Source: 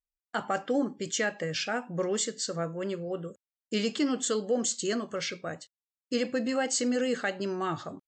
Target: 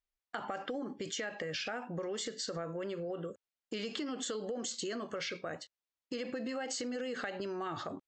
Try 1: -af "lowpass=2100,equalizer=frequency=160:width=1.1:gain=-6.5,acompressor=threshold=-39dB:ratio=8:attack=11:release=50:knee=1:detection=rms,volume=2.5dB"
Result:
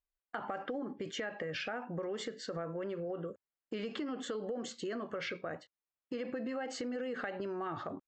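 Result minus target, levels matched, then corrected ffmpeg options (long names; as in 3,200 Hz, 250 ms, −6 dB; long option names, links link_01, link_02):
4,000 Hz band −4.0 dB
-af "lowpass=5100,equalizer=frequency=160:width=1.1:gain=-6.5,acompressor=threshold=-39dB:ratio=8:attack=11:release=50:knee=1:detection=rms,volume=2.5dB"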